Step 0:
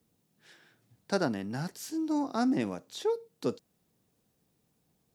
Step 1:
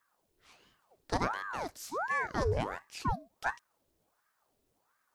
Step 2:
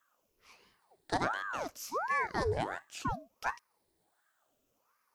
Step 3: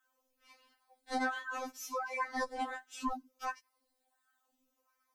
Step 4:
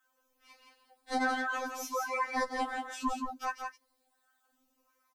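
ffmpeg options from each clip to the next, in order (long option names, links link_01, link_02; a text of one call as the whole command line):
ffmpeg -i in.wav -af "aeval=exprs='val(0)*sin(2*PI*800*n/s+800*0.8/1.4*sin(2*PI*1.4*n/s))':channel_layout=same" out.wav
ffmpeg -i in.wav -af "afftfilt=real='re*pow(10,7/40*sin(2*PI*(0.86*log(max(b,1)*sr/1024/100)/log(2)-(-0.66)*(pts-256)/sr)))':imag='im*pow(10,7/40*sin(2*PI*(0.86*log(max(b,1)*sr/1024/100)/log(2)-(-0.66)*(pts-256)/sr)))':win_size=1024:overlap=0.75,lowshelf=frequency=190:gain=-6" out.wav
ffmpeg -i in.wav -af "afftfilt=real='re*3.46*eq(mod(b,12),0)':imag='im*3.46*eq(mod(b,12),0)':win_size=2048:overlap=0.75" out.wav
ffmpeg -i in.wav -af "aecho=1:1:170:0.562,volume=3dB" out.wav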